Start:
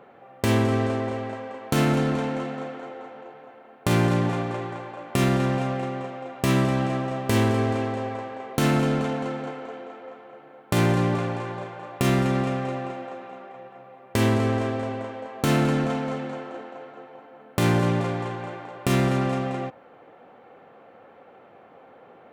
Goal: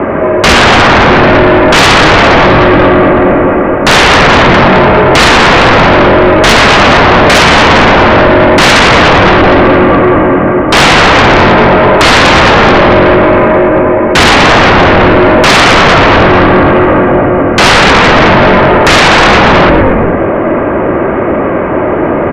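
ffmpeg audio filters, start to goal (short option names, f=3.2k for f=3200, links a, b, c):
-filter_complex "[0:a]highpass=f=260:t=q:w=0.5412,highpass=f=260:t=q:w=1.307,lowpass=f=2.6k:t=q:w=0.5176,lowpass=f=2.6k:t=q:w=0.7071,lowpass=f=2.6k:t=q:w=1.932,afreqshift=-160,asoftclip=type=tanh:threshold=-19dB,asplit=7[a][b][c][d][e][f][g];[b]adelay=116,afreqshift=-47,volume=-6dB[h];[c]adelay=232,afreqshift=-94,volume=-11.7dB[i];[d]adelay=348,afreqshift=-141,volume=-17.4dB[j];[e]adelay=464,afreqshift=-188,volume=-23dB[k];[f]adelay=580,afreqshift=-235,volume=-28.7dB[l];[g]adelay=696,afreqshift=-282,volume=-34.4dB[m];[a][h][i][j][k][l][m]amix=inputs=7:normalize=0,aeval=exprs='0.188*sin(PI/2*6.31*val(0)/0.188)':c=same,apsyclip=21.5dB,volume=-1.5dB"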